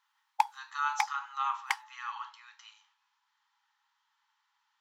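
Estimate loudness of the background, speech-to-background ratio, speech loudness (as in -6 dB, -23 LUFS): -34.5 LUFS, -2.0 dB, -36.5 LUFS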